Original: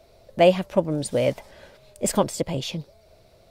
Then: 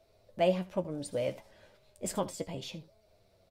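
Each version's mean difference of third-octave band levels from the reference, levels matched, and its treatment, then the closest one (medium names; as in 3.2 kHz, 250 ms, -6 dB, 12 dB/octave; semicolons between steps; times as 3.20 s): 1.5 dB: flange 0.69 Hz, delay 9.1 ms, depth 2.3 ms, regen +48%; delay 76 ms -18 dB; trim -7.5 dB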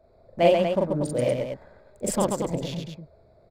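6.5 dB: local Wiener filter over 15 samples; on a send: loudspeakers at several distances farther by 14 m 0 dB, 46 m -3 dB, 82 m -6 dB; on the sum: trim -5.5 dB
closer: first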